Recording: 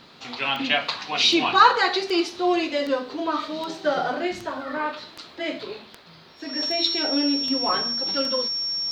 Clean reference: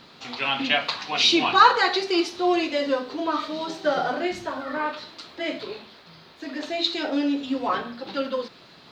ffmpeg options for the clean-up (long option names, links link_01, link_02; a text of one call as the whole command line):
ffmpeg -i in.wav -af "adeclick=threshold=4,bandreject=frequency=5500:width=30" out.wav